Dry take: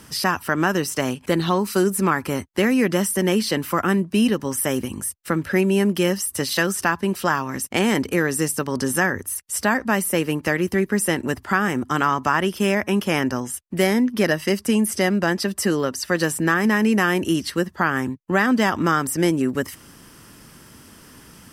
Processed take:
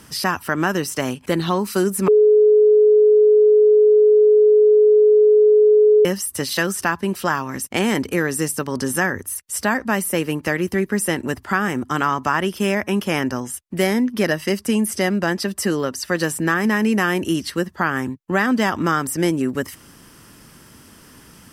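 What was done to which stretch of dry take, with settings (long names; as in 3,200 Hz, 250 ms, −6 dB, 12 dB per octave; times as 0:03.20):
0:02.08–0:06.05: beep over 424 Hz −9 dBFS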